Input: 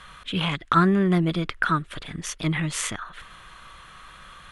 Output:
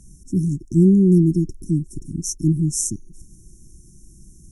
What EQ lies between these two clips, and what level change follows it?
brick-wall FIR band-stop 390–5300 Hz; +7.5 dB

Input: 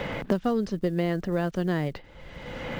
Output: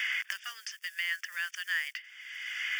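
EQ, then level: Chebyshev high-pass 1.7 kHz, order 4; Butterworth band-stop 4 kHz, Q 3.3; +8.5 dB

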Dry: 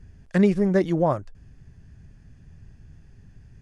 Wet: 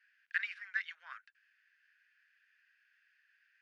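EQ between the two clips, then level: Chebyshev high-pass 1.5 kHz, order 5; distance through air 360 m; band-stop 3.4 kHz, Q 18; +4.0 dB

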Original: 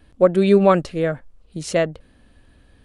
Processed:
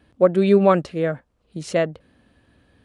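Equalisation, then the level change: high-pass 86 Hz 12 dB/octave; treble shelf 5.3 kHz -7 dB; -1.0 dB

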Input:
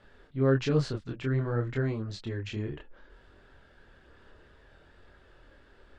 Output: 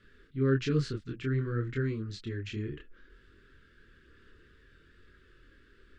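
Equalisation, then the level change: Chebyshev band-stop 400–1400 Hz, order 2; -1.0 dB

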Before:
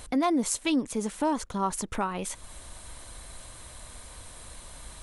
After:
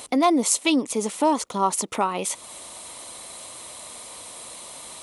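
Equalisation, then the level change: Bessel high-pass 330 Hz, order 2; peaking EQ 1.6 kHz -11.5 dB 0.34 oct; +8.5 dB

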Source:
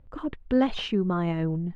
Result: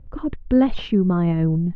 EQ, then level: Bessel low-pass 4.4 kHz, order 2; bass shelf 330 Hz +11 dB; 0.0 dB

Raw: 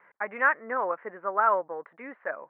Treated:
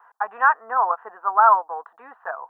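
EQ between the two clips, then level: resonant low shelf 470 Hz -12 dB, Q 3; static phaser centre 580 Hz, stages 6; +7.5 dB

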